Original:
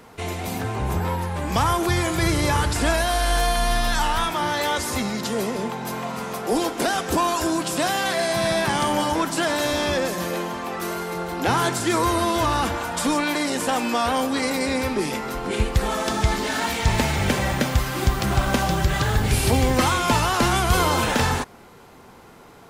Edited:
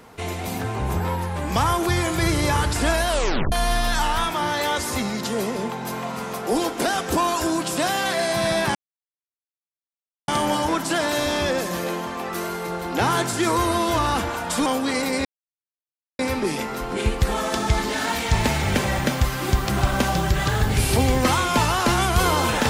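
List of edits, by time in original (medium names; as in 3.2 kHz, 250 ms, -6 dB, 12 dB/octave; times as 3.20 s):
3.09 s: tape stop 0.43 s
8.75 s: insert silence 1.53 s
13.13–14.14 s: delete
14.73 s: insert silence 0.94 s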